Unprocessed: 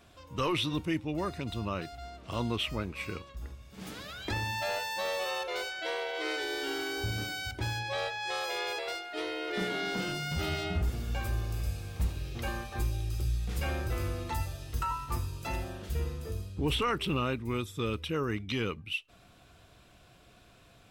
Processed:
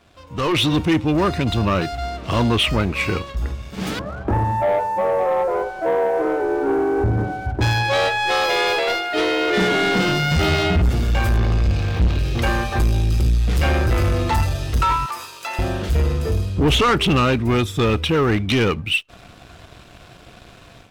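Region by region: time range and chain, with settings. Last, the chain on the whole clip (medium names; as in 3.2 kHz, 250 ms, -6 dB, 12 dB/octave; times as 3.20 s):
3.99–7.61 s: low-pass 1.1 kHz 24 dB/octave + doubling 15 ms -10.5 dB
11.37–12.19 s: jump at every zero crossing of -45 dBFS + low-pass 4.9 kHz
15.06–15.59 s: high-pass 810 Hz + compression 4:1, threshold -42 dBFS
whole clip: treble shelf 7.9 kHz -10.5 dB; waveshaping leveller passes 2; level rider gain up to 10.5 dB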